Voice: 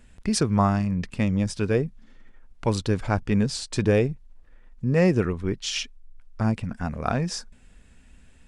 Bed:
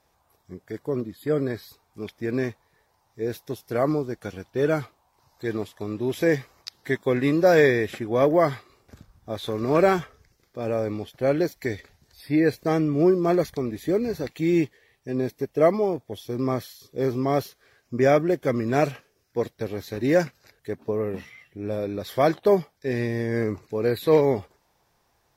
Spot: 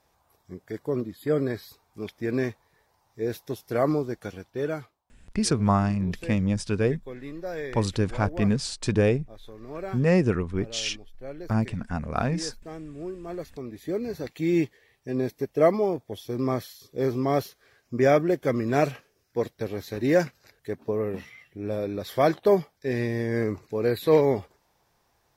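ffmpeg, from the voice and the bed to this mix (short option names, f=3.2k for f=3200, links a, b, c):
-filter_complex "[0:a]adelay=5100,volume=-1dB[a];[1:a]volume=15.5dB,afade=t=out:st=4.12:d=0.92:silence=0.149624,afade=t=in:st=13.23:d=1.49:silence=0.158489[b];[a][b]amix=inputs=2:normalize=0"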